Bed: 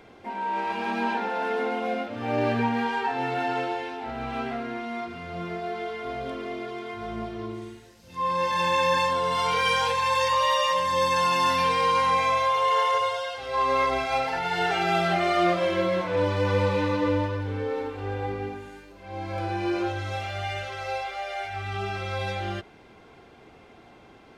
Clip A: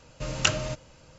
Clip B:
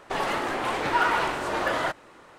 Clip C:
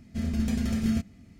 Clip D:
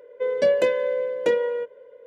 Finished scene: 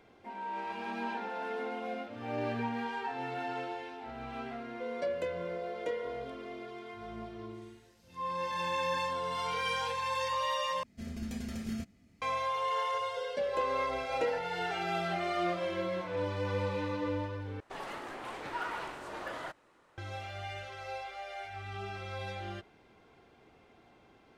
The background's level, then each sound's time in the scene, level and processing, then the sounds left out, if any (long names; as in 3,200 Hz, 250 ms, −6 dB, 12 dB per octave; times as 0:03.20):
bed −10 dB
0:04.60: mix in D −15 dB
0:10.83: overwrite with C −7.5 dB + bass and treble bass −6 dB, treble 0 dB
0:12.95: mix in D −10.5 dB + sample-and-hold tremolo
0:17.60: overwrite with B −14.5 dB
not used: A